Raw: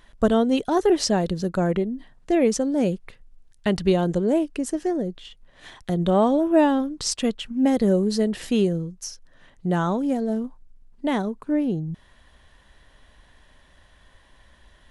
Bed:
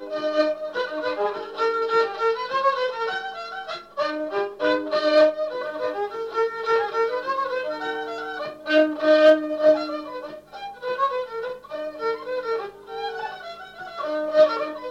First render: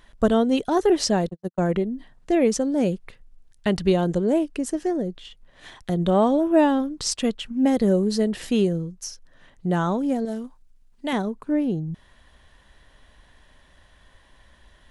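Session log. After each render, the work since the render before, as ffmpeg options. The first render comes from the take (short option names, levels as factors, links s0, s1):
-filter_complex "[0:a]asettb=1/sr,asplit=3[s0][s1][s2];[s0]atrim=end=1.294[s3];[s1]atrim=start=1.29:end=1.69,asetpts=PTS-STARTPTS,afade=t=in:d=0.004:c=qsin,afade=t=out:st=0.396:d=0.004:c=qsin,agate=range=0.00141:threshold=0.0708:ratio=16:release=100:detection=peak[s4];[s2]atrim=start=1.686[s5];[s3][s4]acrossfade=d=0.004:c1=hsin:c2=qsin[s6];[s6][s5]acrossfade=d=0.004:c1=qsin:c2=hsin,asettb=1/sr,asplit=3[s7][s8][s9];[s7]atrim=end=10.254[s10];[s8]atrim=start=10.25:end=11.13,asetpts=PTS-STARTPTS,afade=t=in:d=0.004:c=qsin,afade=t=out:st=0.876:d=0.004:c=qsin,tiltshelf=f=1300:g=-5.5[s11];[s9]atrim=start=11.126[s12];[s10][s11]acrossfade=d=0.004:c1=hsin:c2=qsin[s13];[s13][s12]acrossfade=d=0.004:c1=qsin:c2=hsin"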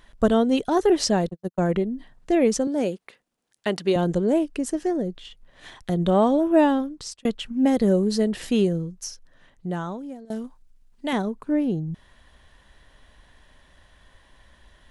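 -filter_complex "[0:a]asettb=1/sr,asplit=3[s0][s1][s2];[s0]atrim=end=2.674[s3];[s1]atrim=start=2.67:end=3.96,asetpts=PTS-STARTPTS,afade=t=in:d=0.004:c=qsin,afade=t=out:st=1.286:d=0.004:c=qsin,highpass=280[s4];[s2]atrim=start=3.956[s5];[s3][s4]acrossfade=d=0.004:c1=hsin:c2=qsin[s6];[s6][s5]acrossfade=d=0.004:c1=qsin:c2=hsin,asplit=3[s7][s8][s9];[s7]atrim=end=7.25,asetpts=PTS-STARTPTS,afade=t=out:st=6.71:d=0.54[s10];[s8]atrim=start=7.25:end=10.3,asetpts=PTS-STARTPTS,afade=t=in:d=0.004:c=hsin,afade=t=out:st=1.81:d=1.24:silence=0.0841395[s11];[s9]atrim=start=10.3,asetpts=PTS-STARTPTS,afade=t=in:d=0.004:c=hsin:silence=0.0841395[s12];[s10][s11][s12]concat=n=3:v=0:a=1"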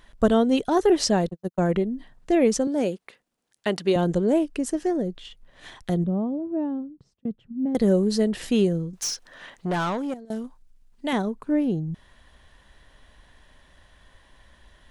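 -filter_complex "[0:a]asettb=1/sr,asplit=3[s0][s1][s2];[s0]atrim=end=6.044[s3];[s1]atrim=start=6.04:end=7.75,asetpts=PTS-STARTPTS,afade=t=in:d=0.004:c=qsin,afade=t=out:st=1.706:d=0.004:c=qsin,bandpass=f=150:t=q:w=1.4[s4];[s2]atrim=start=7.746[s5];[s3][s4]acrossfade=d=0.004:c1=hsin:c2=qsin[s6];[s6][s5]acrossfade=d=0.004:c1=qsin:c2=hsin,asettb=1/sr,asplit=3[s7][s8][s9];[s7]atrim=end=8.934[s10];[s8]atrim=start=8.93:end=10.14,asetpts=PTS-STARTPTS,afade=t=in:d=0.004:c=qsin,afade=t=out:st=1.206:d=0.004:c=qsin,asplit=2[s11][s12];[s12]highpass=f=720:p=1,volume=12.6,asoftclip=type=tanh:threshold=0.126[s13];[s11][s13]amix=inputs=2:normalize=0,lowpass=f=6300:p=1,volume=0.501[s14];[s9]atrim=start=10.136[s15];[s10][s14]acrossfade=d=0.004:c1=hsin:c2=qsin[s16];[s16][s15]acrossfade=d=0.004:c1=qsin:c2=hsin"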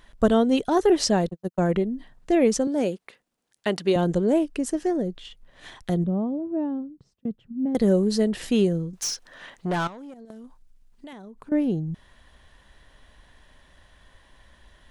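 -filter_complex "[0:a]asettb=1/sr,asplit=3[s0][s1][s2];[s0]atrim=end=9.874[s3];[s1]atrim=start=9.87:end=11.52,asetpts=PTS-STARTPTS,afade=t=in:d=0.004:c=qsin,afade=t=out:st=1.646:d=0.004:c=qsin,acompressor=threshold=0.0126:ratio=12:attack=3.2:release=140:knee=1:detection=peak[s4];[s2]atrim=start=11.516[s5];[s3][s4]acrossfade=d=0.004:c1=hsin:c2=qsin[s6];[s6][s5]acrossfade=d=0.004:c1=qsin:c2=hsin"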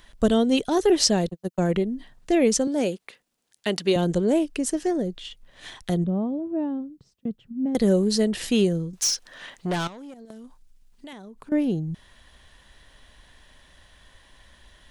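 -filter_complex "[0:a]acrossover=split=650|2300[s0][s1][s2];[s1]alimiter=level_in=1.26:limit=0.0631:level=0:latency=1:release=156,volume=0.794[s3];[s2]acontrast=38[s4];[s0][s3][s4]amix=inputs=3:normalize=0"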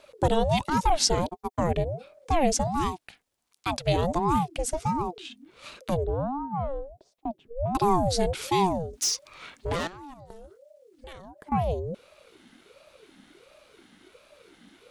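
-af "aeval=exprs='val(0)*sin(2*PI*420*n/s+420*0.45/1.4*sin(2*PI*1.4*n/s))':c=same"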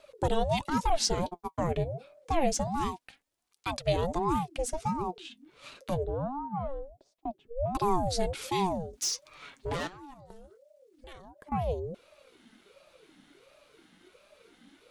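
-filter_complex "[0:a]acrossover=split=7100[s0][s1];[s1]asoftclip=type=tanh:threshold=0.0596[s2];[s0][s2]amix=inputs=2:normalize=0,flanger=delay=1.5:depth=6:regen=61:speed=0.26:shape=triangular"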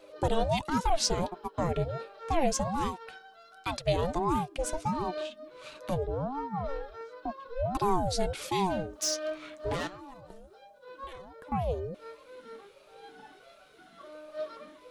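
-filter_complex "[1:a]volume=0.0891[s0];[0:a][s0]amix=inputs=2:normalize=0"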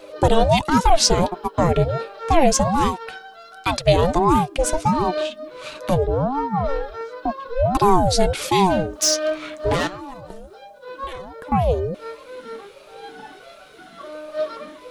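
-af "volume=3.98,alimiter=limit=0.708:level=0:latency=1"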